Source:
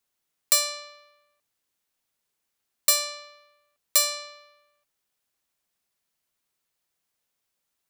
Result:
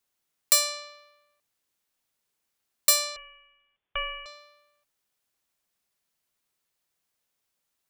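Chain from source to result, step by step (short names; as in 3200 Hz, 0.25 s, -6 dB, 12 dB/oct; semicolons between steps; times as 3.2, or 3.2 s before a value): 3.16–4.26 inverted band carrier 3500 Hz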